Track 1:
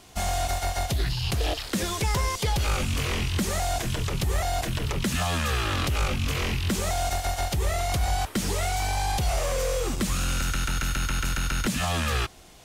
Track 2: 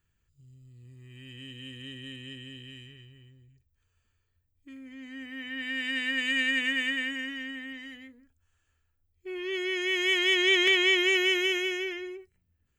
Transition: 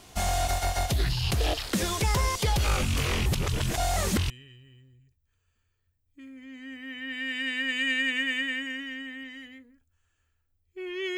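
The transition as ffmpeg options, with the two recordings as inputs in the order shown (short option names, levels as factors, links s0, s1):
-filter_complex "[0:a]apad=whole_dur=11.17,atrim=end=11.17,asplit=2[s0][s1];[s0]atrim=end=3.262[s2];[s1]atrim=start=3.258:end=4.302,asetpts=PTS-STARTPTS,areverse[s3];[1:a]atrim=start=2.788:end=9.66[s4];[s2][s3]acrossfade=d=0.004:c1=hsin:c2=hsin[s5];[s5][s4]acrossfade=d=0.004:c1=hsin:c2=hsin"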